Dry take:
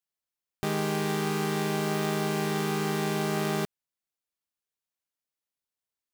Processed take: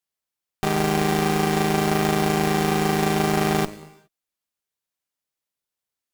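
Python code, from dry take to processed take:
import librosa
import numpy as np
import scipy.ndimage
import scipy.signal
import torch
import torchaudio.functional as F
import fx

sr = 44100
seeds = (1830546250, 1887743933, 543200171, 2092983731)

y = fx.rev_gated(x, sr, seeds[0], gate_ms=440, shape='falling', drr_db=12.0)
y = fx.cheby_harmonics(y, sr, harmonics=(2, 3, 8), levels_db=(-12, -18, -16), full_scale_db=-17.5)
y = F.gain(torch.from_numpy(y), 7.5).numpy()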